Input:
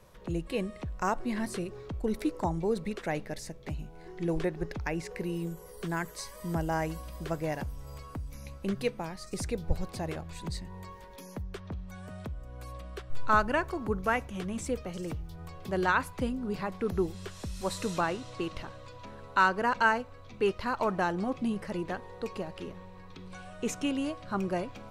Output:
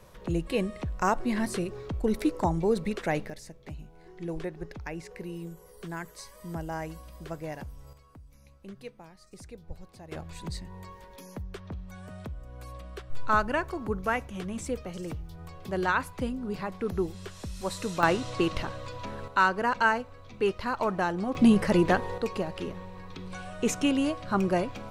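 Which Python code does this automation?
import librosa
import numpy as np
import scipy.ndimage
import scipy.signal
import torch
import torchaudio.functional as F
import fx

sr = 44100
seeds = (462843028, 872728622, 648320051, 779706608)

y = fx.gain(x, sr, db=fx.steps((0.0, 4.0), (3.3, -4.5), (7.93, -12.5), (10.12, 0.0), (18.03, 8.0), (19.28, 1.0), (21.35, 12.0), (22.18, 5.5)))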